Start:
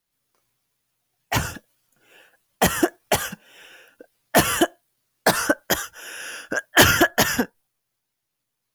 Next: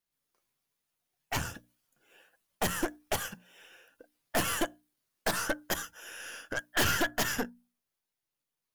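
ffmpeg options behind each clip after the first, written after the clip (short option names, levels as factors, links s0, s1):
-af "bandreject=f=60:t=h:w=6,bandreject=f=120:t=h:w=6,bandreject=f=180:t=h:w=6,bandreject=f=240:t=h:w=6,bandreject=f=300:t=h:w=6,aeval=exprs='(tanh(7.94*val(0)+0.65)-tanh(0.65))/7.94':c=same,volume=0.531"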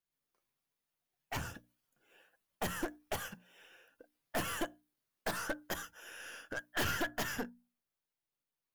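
-filter_complex "[0:a]equalizer=f=8000:t=o:w=2.1:g=-4,asplit=2[s0][s1];[s1]aeval=exprs='0.0178*(abs(mod(val(0)/0.0178+3,4)-2)-1)':c=same,volume=0.398[s2];[s0][s2]amix=inputs=2:normalize=0,volume=0.473"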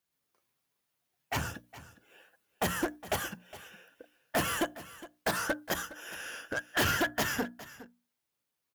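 -af "highpass=49,aecho=1:1:412:0.141,volume=2.11"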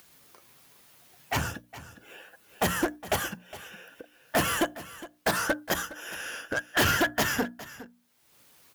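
-af "acompressor=mode=upward:threshold=0.00631:ratio=2.5,volume=1.68"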